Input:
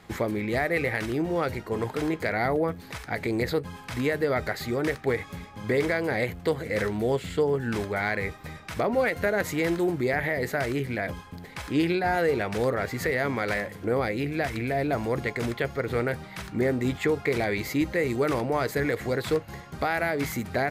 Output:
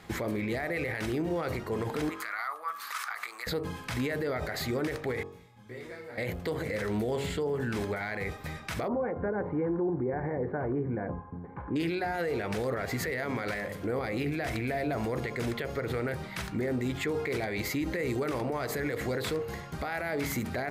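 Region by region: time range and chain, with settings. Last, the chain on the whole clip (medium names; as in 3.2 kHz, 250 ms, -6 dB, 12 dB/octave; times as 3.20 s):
2.09–3.47 s: treble shelf 4 kHz +10 dB + compression 12:1, threshold -33 dBFS + resonant high-pass 1.2 kHz, resonance Q 8.5
5.23–6.18 s: feedback comb 120 Hz, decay 0.81 s, mix 90% + detune thickener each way 23 cents
8.88–11.76 s: low-pass 1.2 kHz 24 dB/octave + comb of notches 650 Hz
whole clip: de-hum 46.21 Hz, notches 28; peak limiter -25 dBFS; trim +1.5 dB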